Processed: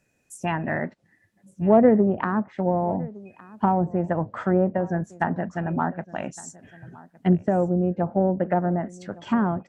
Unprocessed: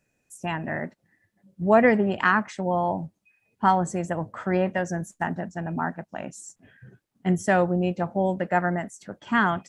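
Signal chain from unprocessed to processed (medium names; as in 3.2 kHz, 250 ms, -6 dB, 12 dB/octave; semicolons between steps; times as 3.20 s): low-pass that closes with the level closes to 600 Hz, closed at -20.5 dBFS; 7.47–8.03 s: compression 2.5:1, threshold -22 dBFS, peak gain reduction 3 dB; Chebyshev shaper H 7 -36 dB, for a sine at -5.5 dBFS; delay 1162 ms -21.5 dB; trim +4.5 dB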